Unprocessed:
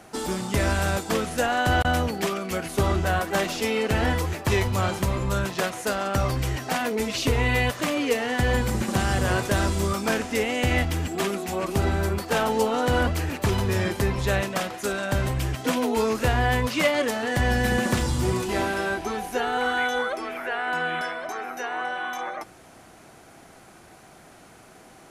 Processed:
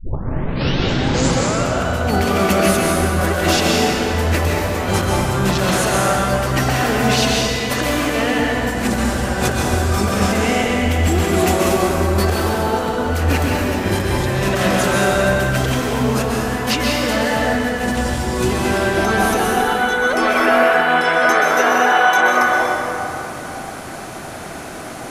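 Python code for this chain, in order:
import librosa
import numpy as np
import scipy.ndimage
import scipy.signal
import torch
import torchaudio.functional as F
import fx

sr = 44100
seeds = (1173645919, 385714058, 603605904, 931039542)

y = fx.tape_start_head(x, sr, length_s=1.75)
y = fx.over_compress(y, sr, threshold_db=-31.0, ratio=-1.0)
y = fx.rev_plate(y, sr, seeds[0], rt60_s=3.1, hf_ratio=0.6, predelay_ms=115, drr_db=-3.0)
y = F.gain(torch.from_numpy(y), 8.5).numpy()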